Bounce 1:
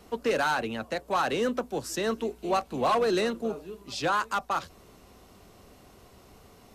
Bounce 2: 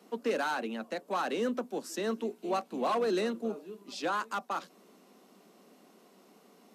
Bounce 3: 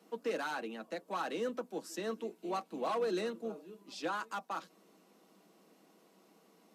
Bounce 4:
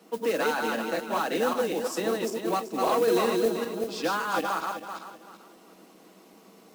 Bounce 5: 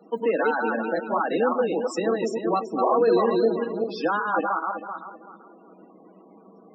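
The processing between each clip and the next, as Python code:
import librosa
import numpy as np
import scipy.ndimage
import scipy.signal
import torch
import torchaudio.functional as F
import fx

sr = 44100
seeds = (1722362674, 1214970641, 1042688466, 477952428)

y1 = scipy.signal.sosfilt(scipy.signal.butter(8, 190.0, 'highpass', fs=sr, output='sos'), x)
y1 = fx.low_shelf(y1, sr, hz=320.0, db=7.0)
y1 = y1 * librosa.db_to_amplitude(-6.5)
y2 = y1 + 0.41 * np.pad(y1, (int(6.2 * sr / 1000.0), 0))[:len(y1)]
y2 = y2 * librosa.db_to_amplitude(-5.5)
y3 = fx.reverse_delay_fb(y2, sr, ms=192, feedback_pct=51, wet_db=-2.0)
y3 = fx.mod_noise(y3, sr, seeds[0], snr_db=19)
y3 = y3 * librosa.db_to_amplitude(8.5)
y4 = fx.spec_topn(y3, sr, count=32)
y4 = y4 * librosa.db_to_amplitude(4.0)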